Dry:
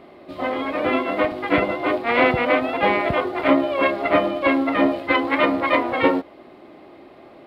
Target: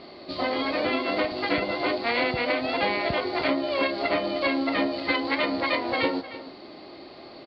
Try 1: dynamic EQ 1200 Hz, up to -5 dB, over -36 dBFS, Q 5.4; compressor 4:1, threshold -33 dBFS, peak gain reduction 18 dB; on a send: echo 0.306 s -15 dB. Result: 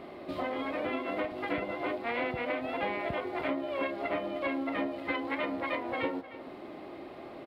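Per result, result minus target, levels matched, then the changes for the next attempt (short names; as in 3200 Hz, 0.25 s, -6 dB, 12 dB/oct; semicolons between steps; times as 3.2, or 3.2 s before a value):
compressor: peak gain reduction +7.5 dB; 4000 Hz band -7.0 dB
change: compressor 4:1, threshold -23 dBFS, peak gain reduction 10.5 dB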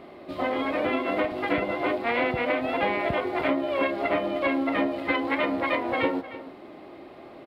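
4000 Hz band -7.0 dB
add after dynamic EQ: synth low-pass 4500 Hz, resonance Q 14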